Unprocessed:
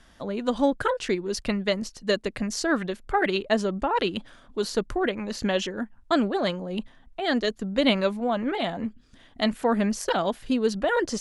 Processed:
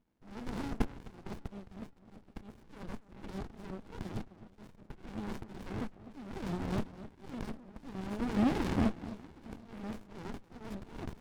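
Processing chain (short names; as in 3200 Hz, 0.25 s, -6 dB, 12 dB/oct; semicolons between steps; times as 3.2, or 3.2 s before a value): per-bin compression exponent 0.4; gate -21 dBFS, range -45 dB; bell 150 Hz +6.5 dB 1.4 oct; in parallel at -0.5 dB: limiter -12.5 dBFS, peak gain reduction 9.5 dB; on the sum: compressor 2.5:1, threshold -18 dBFS, peak gain reduction 7.5 dB; auto swell 0.692 s; formant shift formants +3 st; on a send: echo with dull and thin repeats by turns 0.256 s, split 960 Hz, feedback 52%, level -13.5 dB; on the sum: running maximum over 65 samples; gain -7 dB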